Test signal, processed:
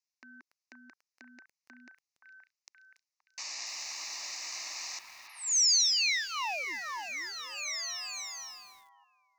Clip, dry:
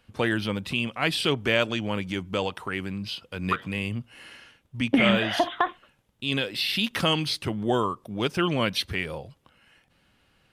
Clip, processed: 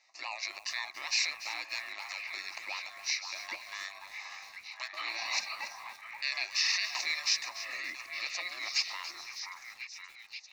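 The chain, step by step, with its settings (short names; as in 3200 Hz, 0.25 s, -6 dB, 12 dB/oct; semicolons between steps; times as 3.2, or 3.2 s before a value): in parallel at 0 dB: compressor 8:1, threshold -31 dBFS; on the sum: limiter -15 dBFS; differentiator; ring modulator 890 Hz; elliptic band-pass 360–6400 Hz, stop band 40 dB; fixed phaser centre 2200 Hz, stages 8; on a send: delay with a stepping band-pass 0.524 s, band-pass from 1100 Hz, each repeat 0.7 oct, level -3.5 dB; on the sum: lo-fi delay 0.286 s, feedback 35%, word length 9-bit, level -13 dB; gain +8.5 dB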